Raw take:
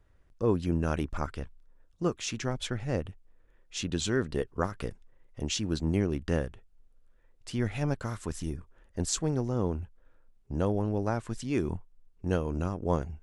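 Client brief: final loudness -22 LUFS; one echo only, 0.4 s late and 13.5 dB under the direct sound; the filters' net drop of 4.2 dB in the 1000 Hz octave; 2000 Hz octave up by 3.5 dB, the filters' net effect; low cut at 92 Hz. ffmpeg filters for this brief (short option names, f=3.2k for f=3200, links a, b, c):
-af "highpass=92,equalizer=f=1k:t=o:g=-8,equalizer=f=2k:t=o:g=7.5,aecho=1:1:400:0.211,volume=10.5dB"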